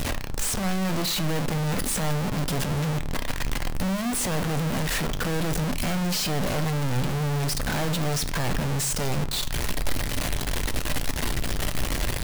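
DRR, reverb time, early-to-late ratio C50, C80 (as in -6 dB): 10.0 dB, 0.45 s, 17.5 dB, 25.0 dB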